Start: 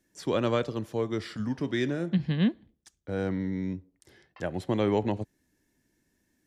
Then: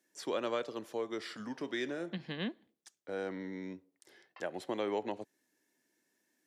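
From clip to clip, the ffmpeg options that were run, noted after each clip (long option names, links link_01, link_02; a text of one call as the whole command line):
ffmpeg -i in.wav -af "highpass=370,acompressor=threshold=-35dB:ratio=1.5,volume=-2dB" out.wav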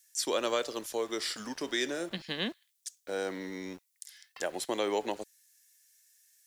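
ffmpeg -i in.wav -filter_complex "[0:a]bass=frequency=250:gain=-7,treble=frequency=4000:gain=14,acrossover=split=1400[link_01][link_02];[link_01]aeval=exprs='val(0)*gte(abs(val(0)),0.00211)':channel_layout=same[link_03];[link_03][link_02]amix=inputs=2:normalize=0,volume=4.5dB" out.wav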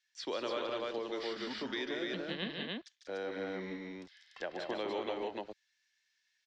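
ffmpeg -i in.wav -filter_complex "[0:a]lowpass=frequency=4100:width=0.5412,lowpass=frequency=4100:width=1.3066,aecho=1:1:148.7|189.5|291.5:0.501|0.447|0.794,acrossover=split=140[link_01][link_02];[link_02]acompressor=threshold=-33dB:ratio=2[link_03];[link_01][link_03]amix=inputs=2:normalize=0,volume=-3.5dB" out.wav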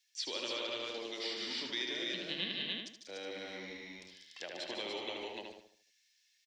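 ffmpeg -i in.wav -filter_complex "[0:a]aexciter=amount=4.4:drive=4.5:freq=2100,asplit=2[link_01][link_02];[link_02]adelay=76,lowpass=frequency=4300:poles=1,volume=-3.5dB,asplit=2[link_03][link_04];[link_04]adelay=76,lowpass=frequency=4300:poles=1,volume=0.41,asplit=2[link_05][link_06];[link_06]adelay=76,lowpass=frequency=4300:poles=1,volume=0.41,asplit=2[link_07][link_08];[link_08]adelay=76,lowpass=frequency=4300:poles=1,volume=0.41,asplit=2[link_09][link_10];[link_10]adelay=76,lowpass=frequency=4300:poles=1,volume=0.41[link_11];[link_03][link_05][link_07][link_09][link_11]amix=inputs=5:normalize=0[link_12];[link_01][link_12]amix=inputs=2:normalize=0,volume=-7.5dB" out.wav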